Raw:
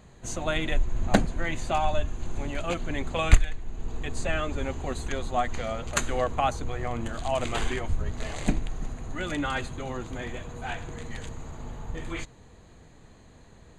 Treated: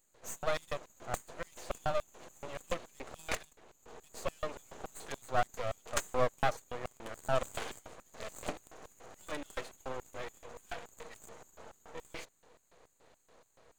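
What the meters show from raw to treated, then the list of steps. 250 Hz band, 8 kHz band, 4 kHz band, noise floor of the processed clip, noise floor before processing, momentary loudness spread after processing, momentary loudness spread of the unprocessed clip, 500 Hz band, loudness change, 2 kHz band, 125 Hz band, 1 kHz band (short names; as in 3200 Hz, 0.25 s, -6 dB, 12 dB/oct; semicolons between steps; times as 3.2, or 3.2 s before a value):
-16.5 dB, -7.5 dB, -9.5 dB, -73 dBFS, -52 dBFS, 19 LU, 13 LU, -6.0 dB, -9.0 dB, -9.5 dB, -16.0 dB, -8.0 dB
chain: LFO high-pass square 3.5 Hz 520–8000 Hz; half-wave rectifier; gain -4 dB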